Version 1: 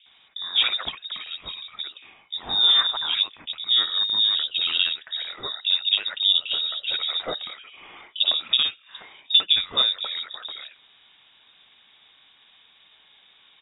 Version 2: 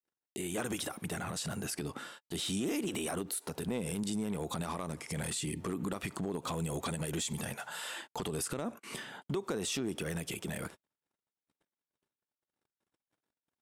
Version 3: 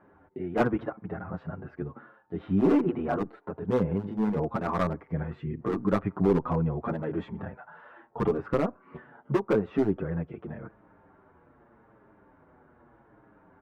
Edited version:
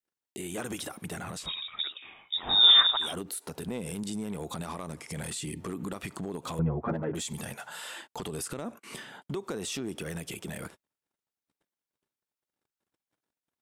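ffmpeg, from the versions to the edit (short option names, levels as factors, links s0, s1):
-filter_complex "[1:a]asplit=3[s0][s1][s2];[s0]atrim=end=1.51[s3];[0:a]atrim=start=1.35:end=3.14[s4];[s1]atrim=start=2.98:end=6.592[s5];[2:a]atrim=start=6.588:end=7.152[s6];[s2]atrim=start=7.148[s7];[s3][s4]acrossfade=d=0.16:c1=tri:c2=tri[s8];[s8][s5]acrossfade=d=0.16:c1=tri:c2=tri[s9];[s9][s6]acrossfade=d=0.004:c1=hsin:c2=hsin[s10];[s10][s7]acrossfade=d=0.004:c1=hsin:c2=hsin"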